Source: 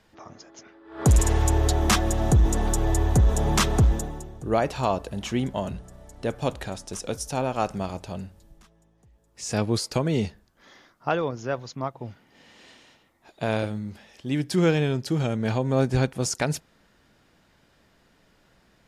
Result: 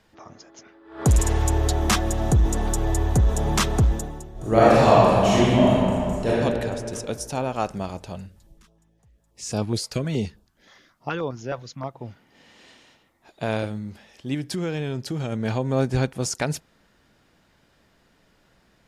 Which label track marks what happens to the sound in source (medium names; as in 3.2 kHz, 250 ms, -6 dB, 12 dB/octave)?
4.320000	6.290000	reverb throw, RT60 2.4 s, DRR -10 dB
8.150000	11.890000	step-sequenced notch 9.5 Hz 310–1900 Hz
14.340000	15.320000	compression 5:1, threshold -24 dBFS